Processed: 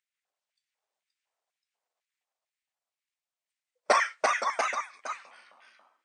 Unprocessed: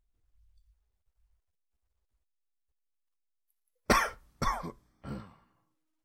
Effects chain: LFO high-pass square 2 Hz 630–2000 Hz; ever faster or slower copies 558 ms, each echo +1 st, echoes 2; brick-wall FIR band-pass 180–9300 Hz

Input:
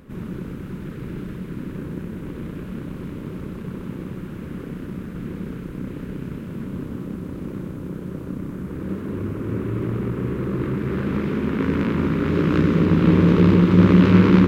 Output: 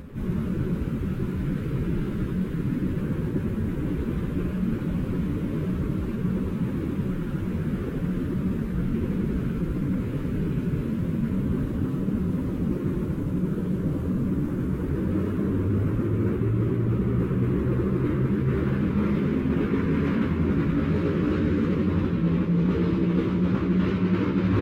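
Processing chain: plain phase-vocoder stretch 1.7×; bass shelf 210 Hz +7.5 dB; speakerphone echo 90 ms, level -6 dB; reverse; compression 12:1, threshold -23 dBFS, peak gain reduction 16.5 dB; reverse; trim +3.5 dB

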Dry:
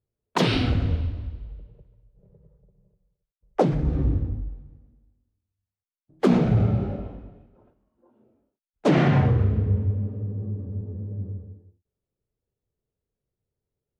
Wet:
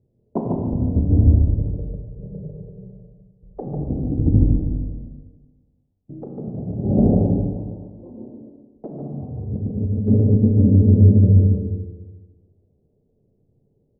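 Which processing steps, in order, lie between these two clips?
inverse Chebyshev low-pass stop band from 1.5 kHz, stop band 40 dB; peaking EQ 190 Hz +11.5 dB 2.6 oct; de-hum 56.21 Hz, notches 3; in parallel at 0 dB: peak limiter -14.5 dBFS, peak gain reduction 15.5 dB; on the sum: compressor with a negative ratio -18 dBFS, ratio -0.5; on a send: delay 147 ms -4 dB; on the sum: Schroeder reverb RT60 1.4 s, combs from 28 ms, DRR 2.5 dB; trim -1 dB

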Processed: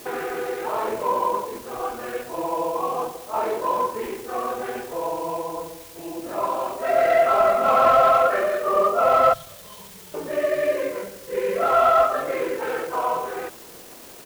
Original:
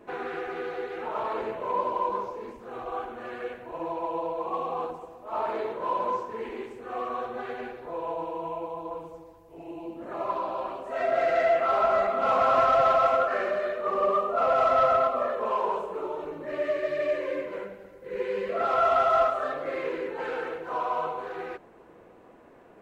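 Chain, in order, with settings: time-frequency box 14.92–16.23 s, 210–3000 Hz -26 dB; added noise white -50 dBFS; tempo 1.6×; trim +6 dB

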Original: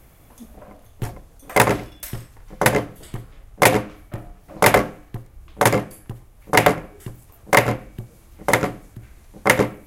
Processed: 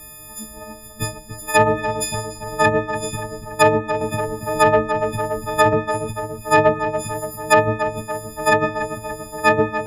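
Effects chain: partials quantised in pitch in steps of 6 st; low-pass that closes with the level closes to 930 Hz, closed at -6 dBFS; in parallel at -1 dB: compression, threshold -27 dBFS, peak gain reduction 18 dB; on the sum: saturation -1 dBFS, distortion -23 dB; filtered feedback delay 287 ms, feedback 63%, low-pass 2.2 kHz, level -8 dB; 4.01–5.73 s: three bands compressed up and down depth 40%; trim -1.5 dB

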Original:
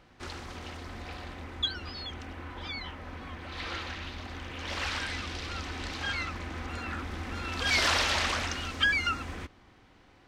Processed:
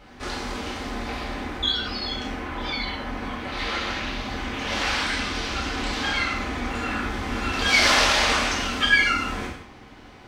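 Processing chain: in parallel at -0.5 dB: compression, threshold -41 dBFS, peak gain reduction 18 dB; on the sum: gated-style reverb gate 240 ms falling, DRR -6 dB

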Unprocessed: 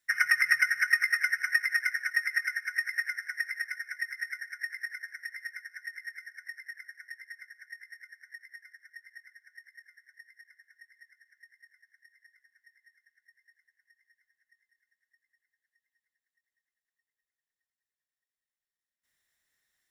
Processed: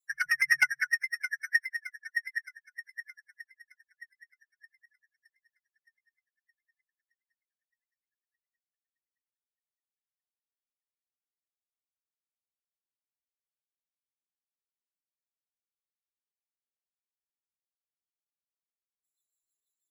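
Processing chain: expander on every frequency bin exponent 3; Chebyshev shaper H 5 -16 dB, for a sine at -12.5 dBFS; rotary cabinet horn 1.2 Hz, later 6.3 Hz, at 3.47 s; trim +3 dB

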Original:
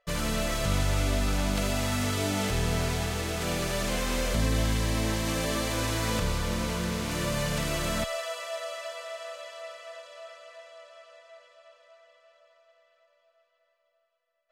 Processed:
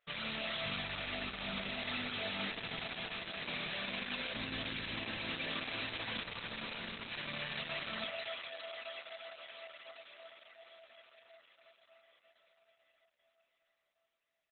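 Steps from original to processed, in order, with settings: pre-emphasis filter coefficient 0.9; frequency-shifting echo 221 ms, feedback 34%, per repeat -140 Hz, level -14 dB; reverberation RT60 1.0 s, pre-delay 3 ms, DRR 7 dB; trim +4 dB; Opus 8 kbps 48 kHz

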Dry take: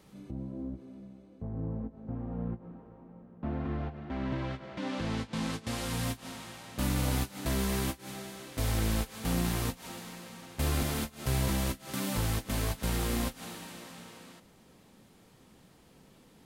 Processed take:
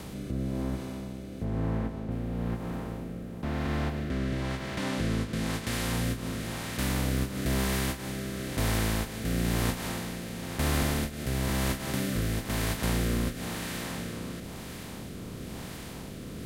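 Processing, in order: spectral levelling over time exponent 0.4; 1.44–2.10 s: treble shelf 10 kHz -> 4.9 kHz -10.5 dB; rotary cabinet horn 1 Hz; dynamic bell 1.8 kHz, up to +4 dB, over -52 dBFS, Q 2.5

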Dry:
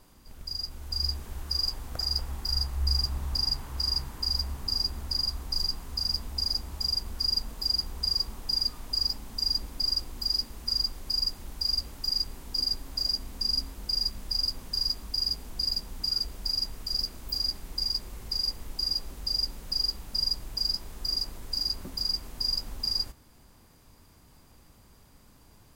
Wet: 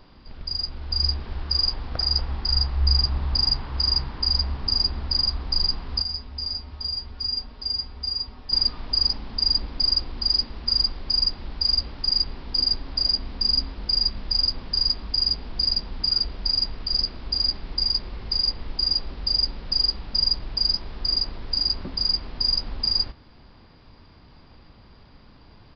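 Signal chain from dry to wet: resampled via 11.025 kHz; 6.02–8.52 s: feedback comb 84 Hz, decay 0.17 s, harmonics odd, mix 80%; trim +7 dB

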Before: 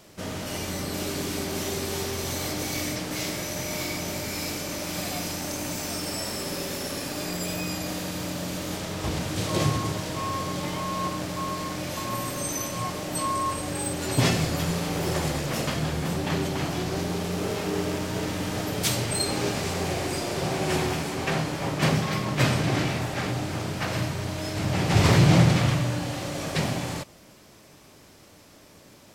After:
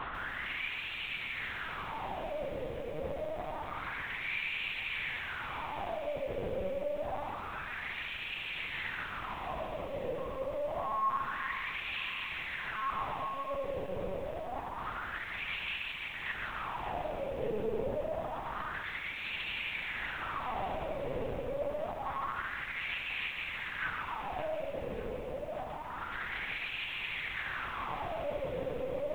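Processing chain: one-bit comparator; high-pass 110 Hz 12 dB/octave; hum notches 50/100/150/200/250/300/350 Hz; in parallel at 0 dB: peak limiter -28 dBFS, peak gain reduction 9 dB; on the sum: overload inside the chain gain 22.5 dB; wah-wah 0.27 Hz 480–2600 Hz, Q 4.8; LPC vocoder at 8 kHz pitch kept; on a send: feedback echo behind a high-pass 581 ms, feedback 58%, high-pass 2.2 kHz, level -10 dB; on the sum: bit-crushed delay 143 ms, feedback 35%, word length 10-bit, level -7 dB

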